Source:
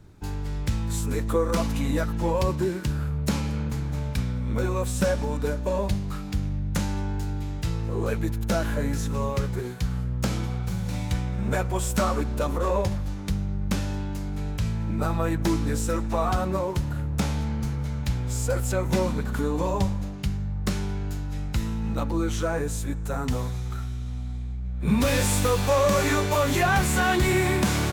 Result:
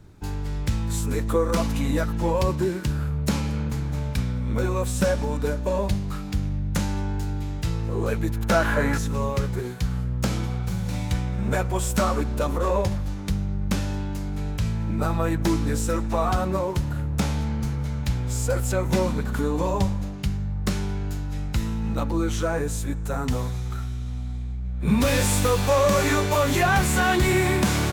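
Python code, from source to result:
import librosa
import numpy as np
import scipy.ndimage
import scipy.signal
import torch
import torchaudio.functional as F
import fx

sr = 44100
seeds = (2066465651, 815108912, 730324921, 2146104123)

y = fx.peak_eq(x, sr, hz=1300.0, db=fx.line((8.34, 5.0), (8.97, 14.0)), octaves=2.2, at=(8.34, 8.97), fade=0.02)
y = y * librosa.db_to_amplitude(1.5)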